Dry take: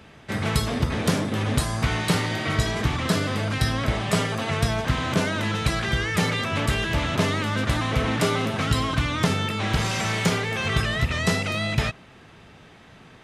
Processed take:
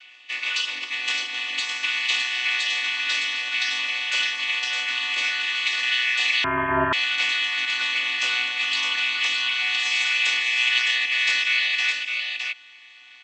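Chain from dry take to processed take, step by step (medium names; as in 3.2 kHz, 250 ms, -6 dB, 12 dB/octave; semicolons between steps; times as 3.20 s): vocoder on a held chord minor triad, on B3; resonant high-pass 2.7 kHz, resonance Q 3.2; on a send: delay 612 ms -5 dB; 6.44–6.93 s: on the sum: frequency inversion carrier 3.6 kHz; trim +7 dB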